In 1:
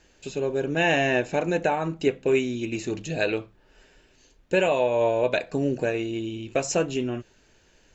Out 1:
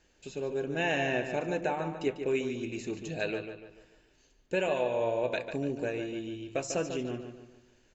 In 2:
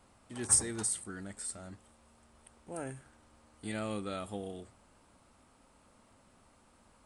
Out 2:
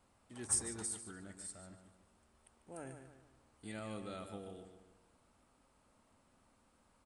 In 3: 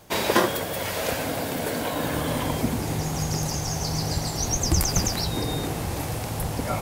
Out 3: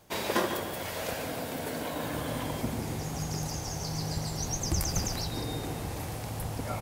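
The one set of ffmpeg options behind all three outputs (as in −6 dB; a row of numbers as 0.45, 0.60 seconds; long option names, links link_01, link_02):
-filter_complex "[0:a]asplit=2[link_01][link_02];[link_02]adelay=146,lowpass=frequency=4900:poles=1,volume=-8dB,asplit=2[link_03][link_04];[link_04]adelay=146,lowpass=frequency=4900:poles=1,volume=0.43,asplit=2[link_05][link_06];[link_06]adelay=146,lowpass=frequency=4900:poles=1,volume=0.43,asplit=2[link_07][link_08];[link_08]adelay=146,lowpass=frequency=4900:poles=1,volume=0.43,asplit=2[link_09][link_10];[link_10]adelay=146,lowpass=frequency=4900:poles=1,volume=0.43[link_11];[link_01][link_03][link_05][link_07][link_09][link_11]amix=inputs=6:normalize=0,volume=-8dB"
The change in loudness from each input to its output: −7.5, −7.5, −7.5 LU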